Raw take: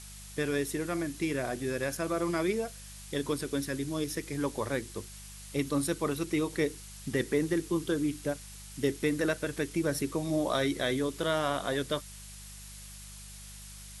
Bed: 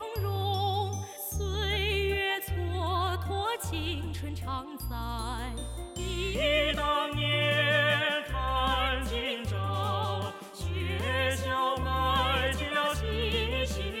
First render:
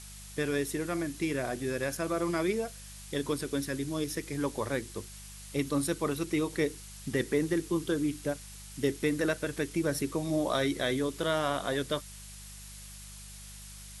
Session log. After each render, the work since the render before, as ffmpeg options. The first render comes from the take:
-af anull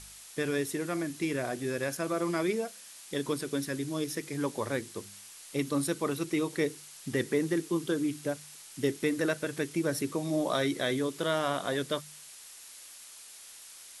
-af "bandreject=f=50:t=h:w=4,bandreject=f=100:t=h:w=4,bandreject=f=150:t=h:w=4,bandreject=f=200:t=h:w=4"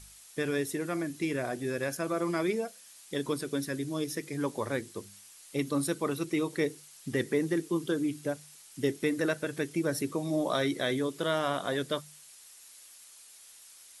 -af "afftdn=nr=6:nf=-50"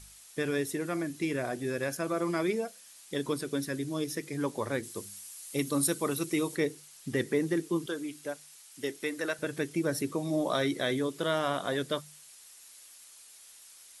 -filter_complex "[0:a]asettb=1/sr,asplit=3[s0][s1][s2];[s0]atrim=end=4.834[s3];[s1]atrim=start=4.83:end=6.56,asetpts=PTS-STARTPTS,afade=t=in:d=0.004:c=qsin,afade=t=out:st=1.726:d=0.004:c=qsin,highshelf=f=6400:g=11[s4];[s2]atrim=start=6.556[s5];[s3][s4]acrossfade=d=0.004:c1=hsin:c2=qsin[s6];[s6][s5]acrossfade=d=0.004:c1=qsin:c2=hsin,asettb=1/sr,asplit=3[s7][s8][s9];[s7]atrim=end=7.864[s10];[s8]atrim=start=7.86:end=9.39,asetpts=PTS-STARTPTS,afade=t=in:d=0.004:c=qsin,afade=t=out:st=1.526:d=0.004:c=qsin,highpass=f=630:p=1[s11];[s9]atrim=start=9.386[s12];[s10][s11]acrossfade=d=0.004:c1=hsin:c2=qsin[s13];[s13][s12]acrossfade=d=0.004:c1=qsin:c2=hsin"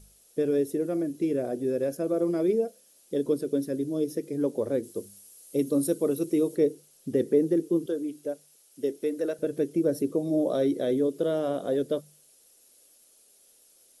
-af "equalizer=f=125:t=o:w=1:g=-3,equalizer=f=250:t=o:w=1:g=4,equalizer=f=500:t=o:w=1:g=10,equalizer=f=1000:t=o:w=1:g=-11,equalizer=f=2000:t=o:w=1:g=-11,equalizer=f=4000:t=o:w=1:g=-6,equalizer=f=8000:t=o:w=1:g=-7"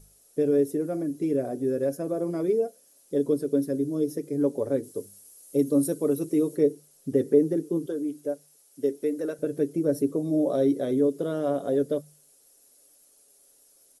-af "equalizer=f=3100:t=o:w=1.2:g=-6.5,aecho=1:1:7.1:0.47"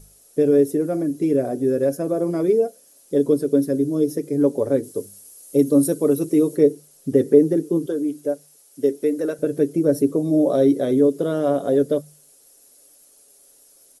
-af "volume=2.11"

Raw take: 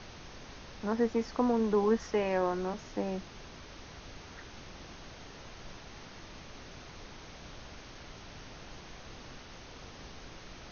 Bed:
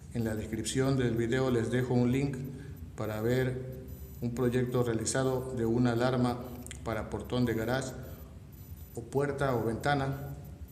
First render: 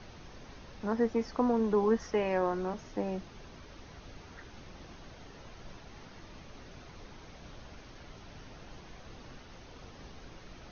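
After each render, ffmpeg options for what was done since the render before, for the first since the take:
-af "afftdn=nr=6:nf=-50"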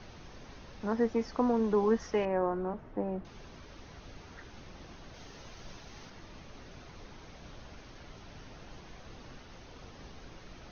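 -filter_complex "[0:a]asettb=1/sr,asplit=3[s0][s1][s2];[s0]atrim=end=2.254[s3];[s1]atrim=start=2.25:end=3.25,asetpts=PTS-STARTPTS,afade=t=in:d=0.004:c=qsin,afade=t=out:st=0.996:d=0.004:c=qsin,lowpass=1400[s4];[s2]atrim=start=3.246[s5];[s3][s4]acrossfade=d=0.004:c1=hsin:c2=qsin[s6];[s6][s5]acrossfade=d=0.004:c1=qsin:c2=hsin,asettb=1/sr,asplit=3[s7][s8][s9];[s7]atrim=end=5.144[s10];[s8]atrim=start=5.14:end=6.1,asetpts=PTS-STARTPTS,afade=t=in:d=0.004:c=qsin,afade=t=out:st=0.956:d=0.004:c=qsin,highshelf=f=4000:g=8[s11];[s9]atrim=start=6.096[s12];[s10][s11]acrossfade=d=0.004:c1=hsin:c2=qsin[s13];[s13][s12]acrossfade=d=0.004:c1=qsin:c2=hsin"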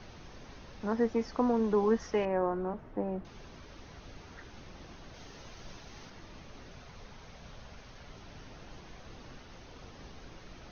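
-filter_complex "[0:a]asettb=1/sr,asplit=3[s0][s1][s2];[s0]atrim=end=6.724[s3];[s1]atrim=start=6.72:end=8.09,asetpts=PTS-STARTPTS,afade=t=in:d=0.004:c=qsin,afade=t=out:st=1.366:d=0.004:c=qsin,equalizer=f=320:t=o:w=0.29:g=-11.5[s4];[s2]atrim=start=8.086[s5];[s3][s4]acrossfade=d=0.004:c1=hsin:c2=qsin[s6];[s6][s5]acrossfade=d=0.004:c1=qsin:c2=hsin"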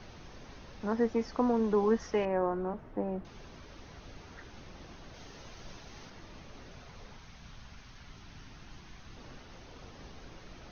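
-filter_complex "[0:a]asettb=1/sr,asplit=3[s0][s1][s2];[s0]atrim=end=7.184[s3];[s1]atrim=start=7.18:end=9.17,asetpts=PTS-STARTPTS,afade=t=in:d=0.004:c=qsin,afade=t=out:st=1.986:d=0.004:c=qsin,equalizer=f=530:t=o:w=0.98:g=-10.5[s4];[s2]atrim=start=9.166[s5];[s3][s4]acrossfade=d=0.004:c1=hsin:c2=qsin[s6];[s6][s5]acrossfade=d=0.004:c1=qsin:c2=hsin"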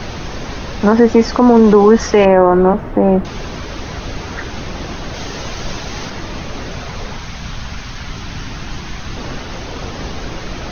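-af "acontrast=69,alimiter=level_in=7.5:limit=0.891:release=50:level=0:latency=1"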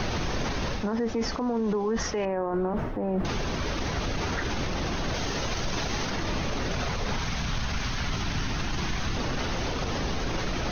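-af "areverse,acompressor=threshold=0.126:ratio=5,areverse,alimiter=limit=0.0944:level=0:latency=1:release=30"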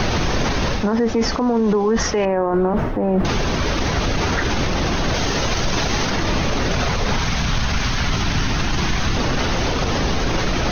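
-af "volume=2.99"

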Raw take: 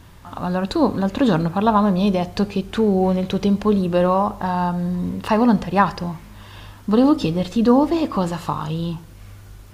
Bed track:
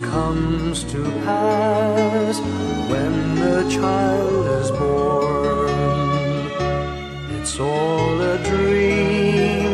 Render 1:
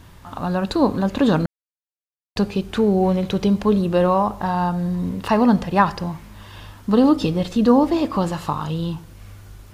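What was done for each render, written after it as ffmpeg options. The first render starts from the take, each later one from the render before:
-filter_complex "[0:a]asplit=3[s0][s1][s2];[s0]atrim=end=1.46,asetpts=PTS-STARTPTS,afade=t=out:st=1.456:d=0.004:c=hsin[s3];[s1]atrim=start=1.46:end=2.36,asetpts=PTS-STARTPTS,volume=0[s4];[s2]atrim=start=2.36,asetpts=PTS-STARTPTS,afade=t=in:d=0.004:c=hsin[s5];[s3][s4][s5]concat=n=3:v=0:a=1"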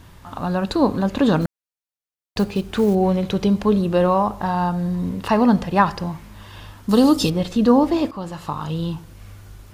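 -filter_complex "[0:a]asettb=1/sr,asplit=3[s0][s1][s2];[s0]atrim=end=1.414[s3];[s1]atrim=start=1.41:end=2.95,asetpts=PTS-STARTPTS,afade=t=in:d=0.004:c=qsin,afade=t=out:st=1.536:d=0.004:c=qsin,acrusher=bits=7:mode=log:mix=0:aa=0.000001[s4];[s2]atrim=start=2.946[s5];[s3][s4]acrossfade=d=0.004:c1=hsin:c2=qsin[s6];[s6][s5]acrossfade=d=0.004:c1=qsin:c2=hsin,asettb=1/sr,asplit=3[s7][s8][s9];[s7]atrim=end=6.894[s10];[s8]atrim=start=6.89:end=7.3,asetpts=PTS-STARTPTS,afade=t=in:d=0.004:c=qsin,afade=t=out:st=0.406:d=0.004:c=qsin,bass=f=250:g=1,treble=f=4000:g=15[s11];[s9]atrim=start=7.296[s12];[s10][s11]acrossfade=d=0.004:c1=hsin:c2=qsin[s13];[s13][s12]acrossfade=d=0.004:c1=qsin:c2=hsin,asplit=2[s14][s15];[s14]atrim=end=8.11,asetpts=PTS-STARTPTS,afade=t=out:st=8.106:d=0.004:c=hsin:silence=0.223872[s16];[s15]atrim=start=8.11,asetpts=PTS-STARTPTS,afade=t=in:d=0.67:silence=0.223872[s17];[s16][s17]concat=n=2:v=0:a=1"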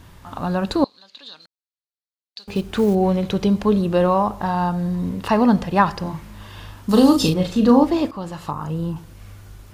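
-filter_complex "[0:a]asettb=1/sr,asplit=3[s0][s1][s2];[s0]atrim=end=0.844[s3];[s1]atrim=start=0.84:end=2.48,asetpts=PTS-STARTPTS,afade=t=in:d=0.004:c=qsin,afade=t=out:st=1.636:d=0.004:c=qsin,bandpass=f=4200:t=q:w=4.9[s4];[s2]atrim=start=2.476[s5];[s3][s4]acrossfade=d=0.004:c1=hsin:c2=qsin[s6];[s6][s5]acrossfade=d=0.004:c1=qsin:c2=hsin,asettb=1/sr,asplit=3[s7][s8][s9];[s7]atrim=end=6.024[s10];[s8]atrim=start=6.02:end=7.84,asetpts=PTS-STARTPTS,afade=t=in:d=0.004:c=qsin,afade=t=out:st=1.816:d=0.004:c=qsin,asplit=2[s11][s12];[s12]adelay=38,volume=0.501[s13];[s11][s13]amix=inputs=2:normalize=0,atrim=end_sample=80262[s14];[s9]atrim=start=7.836[s15];[s10][s14]acrossfade=d=0.004:c1=hsin:c2=qsin[s16];[s16][s15]acrossfade=d=0.004:c1=qsin:c2=hsin,asettb=1/sr,asplit=3[s17][s18][s19];[s17]atrim=end=8.514[s20];[s18]atrim=start=8.51:end=8.96,asetpts=PTS-STARTPTS,afade=t=in:d=0.004:c=qsin,afade=t=out:st=0.446:d=0.004:c=qsin,equalizer=f=3600:w=1.6:g=-15[s21];[s19]atrim=start=8.956[s22];[s20][s21]acrossfade=d=0.004:c1=hsin:c2=qsin[s23];[s23][s22]acrossfade=d=0.004:c1=qsin:c2=hsin"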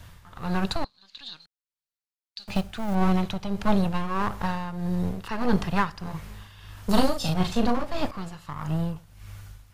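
-filter_complex "[0:a]tremolo=f=1.6:d=0.69,acrossover=split=210|920[s0][s1][s2];[s1]aeval=exprs='abs(val(0))':c=same[s3];[s0][s3][s2]amix=inputs=3:normalize=0"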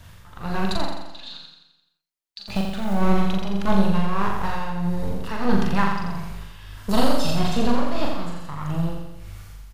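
-filter_complex "[0:a]asplit=2[s0][s1];[s1]adelay=41,volume=0.668[s2];[s0][s2]amix=inputs=2:normalize=0,asplit=2[s3][s4];[s4]aecho=0:1:86|172|258|344|430|516|602:0.562|0.309|0.17|0.0936|0.0515|0.0283|0.0156[s5];[s3][s5]amix=inputs=2:normalize=0"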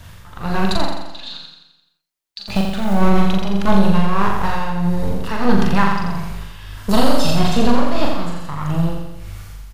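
-af "volume=2,alimiter=limit=0.891:level=0:latency=1"

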